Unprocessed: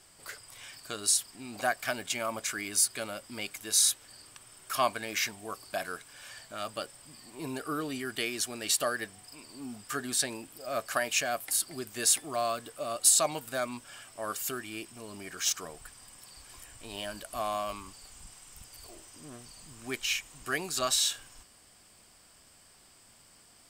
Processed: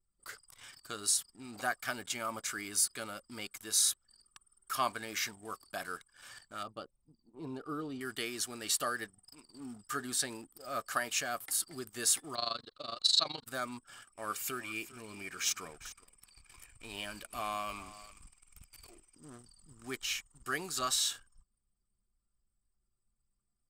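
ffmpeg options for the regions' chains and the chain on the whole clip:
-filter_complex "[0:a]asettb=1/sr,asplit=3[a][b][c];[a]atrim=end=6.634[d];[b]atrim=start=6.63:end=8.01,asetpts=PTS-STARTPTS,afade=t=in:d=0.004:c=qsin,afade=t=out:st=1.376:d=0.004:c=qsin,acrossover=split=4100[e][f];[f]acompressor=threshold=-60dB:ratio=4:attack=1:release=60[g];[e][g]amix=inputs=2:normalize=0,equalizer=f=1.9k:t=o:w=1.1:g=-12[h];[c]atrim=start=8.006[i];[d][h]acrossfade=d=0.004:c1=hsin:c2=qsin[j];[j][i]acrossfade=d=0.004:c1=qsin:c2=hsin,asettb=1/sr,asplit=3[k][l][m];[k]atrim=end=12.354[n];[l]atrim=start=12.35:end=13.46,asetpts=PTS-STARTPTS,afade=t=in:d=0.004:c=qsin,afade=t=out:st=1.106:d=0.004:c=qsin,lowpass=f=4.1k:t=q:w=10,tremolo=f=24:d=0.857[o];[m]atrim=start=13.456[p];[n][o]acrossfade=d=0.004:c1=hsin:c2=qsin[q];[q][p]acrossfade=d=0.004:c1=qsin:c2=hsin,asettb=1/sr,asplit=3[r][s][t];[r]atrim=end=14.134[u];[s]atrim=start=14.13:end=19.15,asetpts=PTS-STARTPTS,afade=t=in:d=0.004:c=qsin,afade=t=out:st=5.016:d=0.004:c=qsin,equalizer=f=2.4k:w=5.1:g=13,aecho=1:1:400:0.15,atrim=end_sample=221382[v];[t]atrim=start=19.146[w];[u][v]acrossfade=d=0.004:c1=hsin:c2=qsin[x];[x][w]acrossfade=d=0.004:c1=qsin:c2=hsin,equalizer=f=630:t=o:w=0.33:g=-6,equalizer=f=1.25k:t=o:w=0.33:g=5,equalizer=f=2.5k:t=o:w=0.33:g=-4,anlmdn=0.01,bandreject=f=1.1k:w=26,volume=-4dB"

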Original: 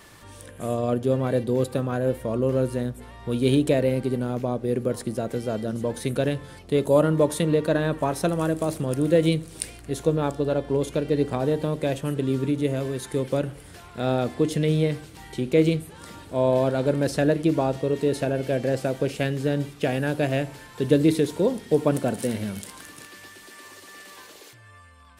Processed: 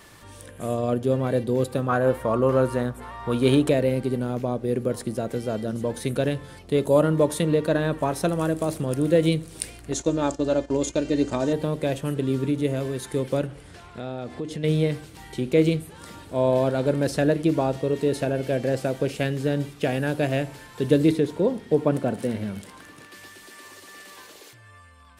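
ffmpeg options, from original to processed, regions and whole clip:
-filter_complex "[0:a]asettb=1/sr,asplit=3[a][b][c];[a]atrim=end=1.884[d];[b]atrim=start=1.88:end=3.7,asetpts=PTS-STARTPTS,afade=t=in:d=0.004:c=qsin,afade=t=out:st=1.816:d=0.004:c=qsin,equalizer=f=1.1k:w=1.1:g=13.5,bandreject=f=1k:w=18[e];[c]atrim=start=3.696[f];[d][e]acrossfade=d=0.004:c1=hsin:c2=qsin[g];[g][f]acrossfade=d=0.004:c1=qsin:c2=hsin,asettb=1/sr,asplit=3[h][i][j];[h]atrim=end=9.924[k];[i]atrim=start=9.92:end=11.53,asetpts=PTS-STARTPTS,afade=t=in:d=0.004:c=qsin,afade=t=out:st=1.606:d=0.004:c=qsin,lowpass=f=6.8k:t=q:w=4.3,agate=range=-11dB:threshold=-36dB:ratio=16:release=100:detection=peak,aecho=1:1:3.3:0.48,atrim=end_sample=71001[l];[j]atrim=start=11.526[m];[k][l]acrossfade=d=0.004:c1=hsin:c2=qsin[n];[n][m]acrossfade=d=0.004:c1=qsin:c2=hsin,asettb=1/sr,asplit=3[o][p][q];[o]atrim=end=13.464[r];[p]atrim=start=13.46:end=14.64,asetpts=PTS-STARTPTS,afade=t=in:d=0.004:c=qsin,afade=t=out:st=1.176:d=0.004:c=qsin,lowpass=10k,highshelf=f=7.1k:g=-5,acompressor=threshold=-31dB:ratio=2.5:attack=3.2:release=140:knee=1:detection=peak[s];[q]atrim=start=14.636[t];[r][s]acrossfade=d=0.004:c1=hsin:c2=qsin[u];[u][t]acrossfade=d=0.004:c1=qsin:c2=hsin,asettb=1/sr,asplit=3[v][w][x];[v]atrim=end=21.114[y];[w]atrim=start=21.11:end=23.12,asetpts=PTS-STARTPTS,afade=t=in:d=0.004:c=qsin,afade=t=out:st=2.006:d=0.004:c=qsin,highpass=44,highshelf=f=3.9k:g=-11[z];[x]atrim=start=23.116[aa];[y][z]acrossfade=d=0.004:c1=hsin:c2=qsin[ab];[ab][aa]acrossfade=d=0.004:c1=qsin:c2=hsin"

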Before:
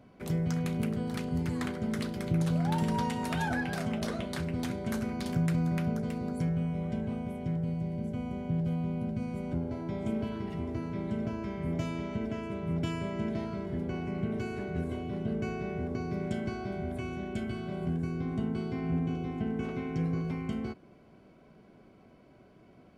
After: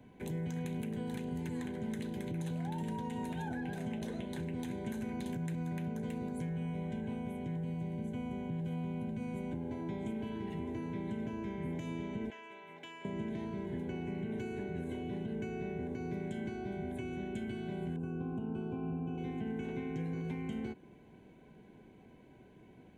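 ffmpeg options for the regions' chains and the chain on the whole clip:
-filter_complex "[0:a]asettb=1/sr,asplit=3[a][b][c];[a]atrim=end=12.304[d];[b]atrim=start=12.3:end=13.05,asetpts=PTS-STARTPTS,afade=t=in:d=0.004:c=qsin,afade=t=out:st=0.746:d=0.004:c=qsin,highpass=960,equalizer=f=10k:w=0.93:g=-12[e];[c]atrim=start=13.046[f];[d][e]acrossfade=d=0.004:c1=hsin:c2=qsin[g];[g][f]acrossfade=d=0.004:c1=qsin:c2=hsin,asettb=1/sr,asplit=3[h][i][j];[h]atrim=end=17.964[k];[i]atrim=start=17.96:end=19.18,asetpts=PTS-STARTPTS,afade=t=in:d=0.004:c=qsin,afade=t=out:st=1.216:d=0.004:c=qsin,asuperstop=centerf=1900:order=12:qfactor=1.9,highshelf=f=2.8k:t=q:w=3:g=-11[l];[j]atrim=start=19.176[m];[k][l]acrossfade=d=0.004:c1=hsin:c2=qsin[n];[n][m]acrossfade=d=0.004:c1=qsin:c2=hsin,alimiter=level_in=0.5dB:limit=-24dB:level=0:latency=1:release=107,volume=-0.5dB,acrossover=split=160|720[o][p][q];[o]acompressor=threshold=-49dB:ratio=4[r];[p]acompressor=threshold=-37dB:ratio=4[s];[q]acompressor=threshold=-49dB:ratio=4[t];[r][s][t]amix=inputs=3:normalize=0,superequalizer=8b=0.501:10b=0.251:14b=0.316"

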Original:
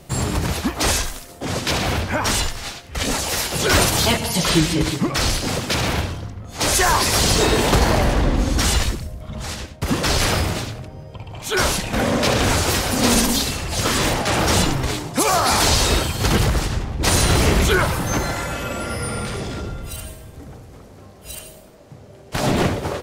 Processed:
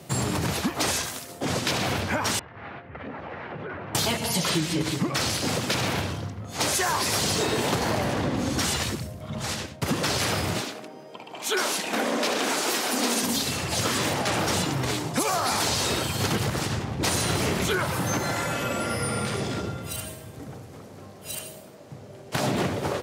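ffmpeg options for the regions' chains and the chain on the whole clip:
-filter_complex "[0:a]asettb=1/sr,asplit=3[a][b][c];[a]atrim=end=2.394[d];[b]atrim=start=2.39:end=3.95,asetpts=PTS-STARTPTS,afade=t=in:d=0.004:c=qsin,afade=t=out:st=1.556:d=0.004:c=qsin,lowpass=f=2k:w=0.5412,lowpass=f=2k:w=1.3066,acompressor=threshold=-32dB:ratio=8:attack=3.2:release=140:knee=1:detection=peak[e];[c]atrim=start=3.946[f];[d][e]acrossfade=d=0.004:c1=hsin:c2=qsin[g];[g][f]acrossfade=d=0.004:c1=qsin:c2=hsin,asettb=1/sr,asplit=3[h][i][j];[h]atrim=end=10.604[k];[i]atrim=start=10.6:end=13.23,asetpts=PTS-STARTPTS,afade=t=in:d=0.004:c=qsin,afade=t=out:st=2.626:d=0.004:c=qsin,highpass=f=240:w=0.5412,highpass=f=240:w=1.3066,bandreject=f=540:w=16[l];[j]atrim=start=13.226[m];[k][l]acrossfade=d=0.004:c1=hsin:c2=qsin[n];[n][m]acrossfade=d=0.004:c1=qsin:c2=hsin,highpass=f=97:w=0.5412,highpass=f=97:w=1.3066,acompressor=threshold=-23dB:ratio=4"

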